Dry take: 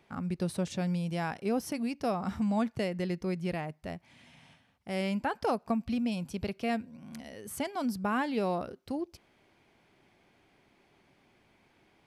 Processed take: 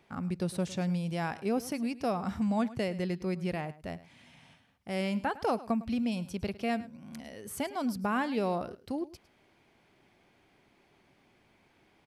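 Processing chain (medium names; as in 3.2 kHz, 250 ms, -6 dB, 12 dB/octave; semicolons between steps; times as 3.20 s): delay 106 ms -17.5 dB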